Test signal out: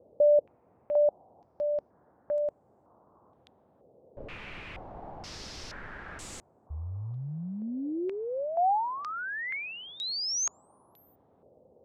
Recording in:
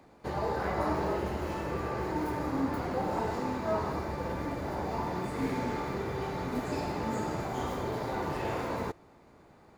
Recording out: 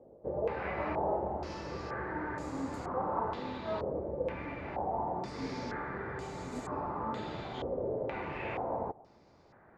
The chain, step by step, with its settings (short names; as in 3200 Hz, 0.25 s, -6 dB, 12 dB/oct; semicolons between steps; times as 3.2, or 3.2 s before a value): dynamic EQ 550 Hz, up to +4 dB, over -40 dBFS, Q 3.8; band noise 69–820 Hz -58 dBFS; stepped low-pass 2.1 Hz 530–7700 Hz; gain -7 dB